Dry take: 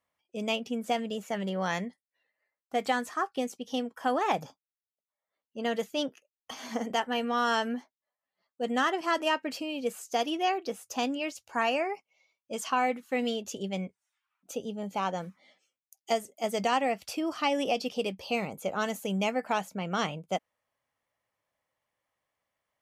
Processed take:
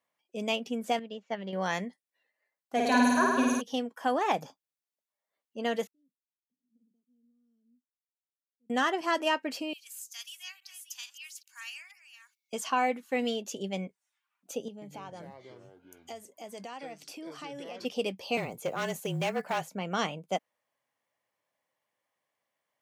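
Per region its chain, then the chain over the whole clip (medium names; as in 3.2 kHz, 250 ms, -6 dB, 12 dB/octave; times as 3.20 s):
0.99–1.53 s: low-pass 5.1 kHz 24 dB/octave + upward expansion 2.5:1, over -40 dBFS
2.76–3.60 s: rippled EQ curve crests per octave 1.5, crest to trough 16 dB + added noise brown -47 dBFS + flutter echo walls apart 9.1 m, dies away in 1.5 s
5.87–8.70 s: inverse Chebyshev low-pass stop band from 770 Hz, stop band 60 dB + differentiator
9.73–12.53 s: chunks repeated in reverse 437 ms, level -12 dB + high-pass 1.3 kHz 24 dB/octave + differentiator
14.68–17.85 s: compression 3:1, threshold -44 dBFS + ever faster or slower copies 136 ms, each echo -6 st, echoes 2, each echo -6 dB
18.37–19.69 s: block-companded coder 7-bit + frequency shift -33 Hz + hard clipper -24.5 dBFS
whole clip: high-pass 160 Hz 12 dB/octave; band-stop 1.3 kHz, Q 16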